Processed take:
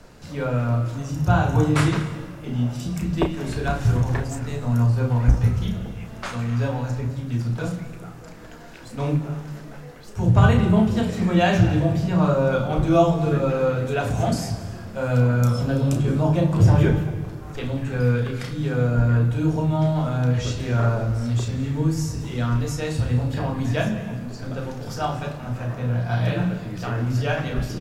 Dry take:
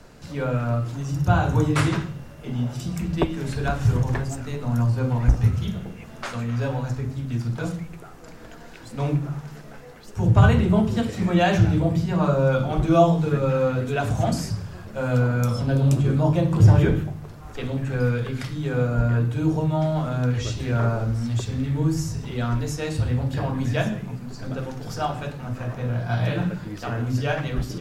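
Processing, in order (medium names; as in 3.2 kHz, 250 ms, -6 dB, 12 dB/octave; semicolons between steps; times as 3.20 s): doubling 33 ms -7.5 dB; on a send: reverberation RT60 1.6 s, pre-delay 163 ms, DRR 13 dB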